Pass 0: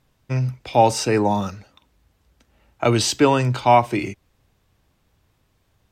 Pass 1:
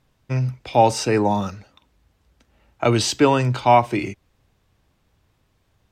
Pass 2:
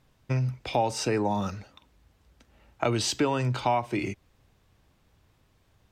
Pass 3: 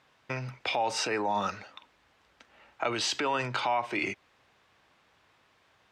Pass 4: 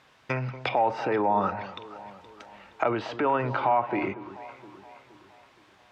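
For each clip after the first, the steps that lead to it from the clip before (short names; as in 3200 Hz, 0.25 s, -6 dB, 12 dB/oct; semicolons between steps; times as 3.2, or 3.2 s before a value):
high shelf 9600 Hz -5.5 dB
compressor 3:1, threshold -25 dBFS, peak gain reduction 12.5 dB
limiter -22.5 dBFS, peak gain reduction 11 dB; band-pass 1700 Hz, Q 0.61; gain +8 dB
treble ducked by the level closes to 1300 Hz, closed at -29 dBFS; echo with dull and thin repeats by turns 0.235 s, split 1100 Hz, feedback 67%, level -13 dB; gain +6 dB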